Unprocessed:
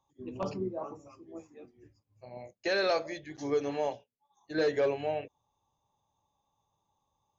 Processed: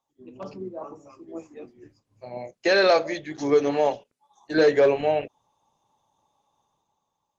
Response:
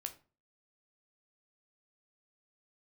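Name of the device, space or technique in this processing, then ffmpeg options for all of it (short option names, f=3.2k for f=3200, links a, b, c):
video call: -af "highpass=140,dynaudnorm=f=320:g=7:m=14dB,volume=-3.5dB" -ar 48000 -c:a libopus -b:a 16k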